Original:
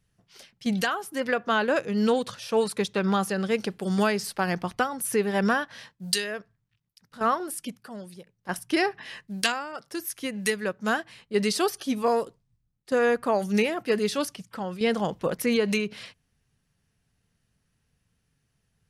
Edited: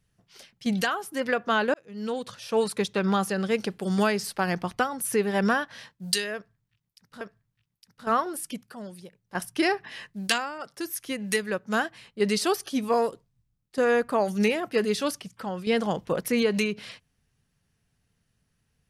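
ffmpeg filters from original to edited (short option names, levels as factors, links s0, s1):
-filter_complex "[0:a]asplit=3[s0][s1][s2];[s0]atrim=end=1.74,asetpts=PTS-STARTPTS,afade=t=out:st=1.736:d=0.004:c=hsin[s3];[s1]atrim=start=1.74:end=7.212,asetpts=PTS-STARTPTS,afade=t=in:d=0.9[s4];[s2]atrim=start=6.348[s5];[s3][s4]concat=n=2:v=0:a=1[s6];[s6][s5]acrossfade=d=0.004:c1=hsin:c2=hsin"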